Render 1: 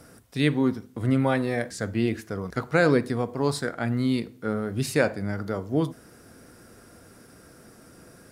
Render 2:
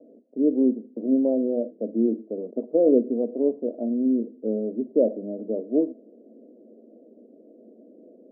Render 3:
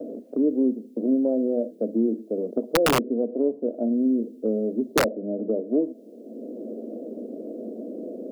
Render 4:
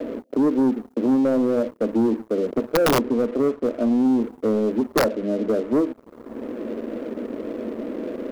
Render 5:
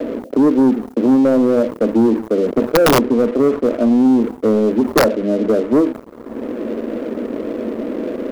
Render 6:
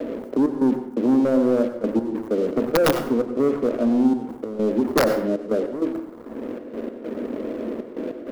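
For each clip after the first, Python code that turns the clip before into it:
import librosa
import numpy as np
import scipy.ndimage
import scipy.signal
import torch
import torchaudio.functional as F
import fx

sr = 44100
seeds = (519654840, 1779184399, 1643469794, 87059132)

y1 = scipy.signal.sosfilt(scipy.signal.cheby1(4, 1.0, [220.0, 630.0], 'bandpass', fs=sr, output='sos'), x)
y1 = F.gain(torch.from_numpy(y1), 4.0).numpy()
y2 = (np.mod(10.0 ** (11.0 / 20.0) * y1 + 1.0, 2.0) - 1.0) / 10.0 ** (11.0 / 20.0)
y2 = fx.band_squash(y2, sr, depth_pct=70)
y3 = fx.leveller(y2, sr, passes=3)
y3 = F.gain(torch.from_numpy(y3), -6.0).numpy()
y4 = fx.sustainer(y3, sr, db_per_s=140.0)
y4 = F.gain(torch.from_numpy(y4), 6.5).numpy()
y5 = fx.step_gate(y4, sr, bpm=98, pattern='xxx.x.xx', floor_db=-12.0, edge_ms=4.5)
y5 = fx.rev_plate(y5, sr, seeds[0], rt60_s=0.63, hf_ratio=0.55, predelay_ms=80, drr_db=8.5)
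y5 = F.gain(torch.from_numpy(y5), -6.0).numpy()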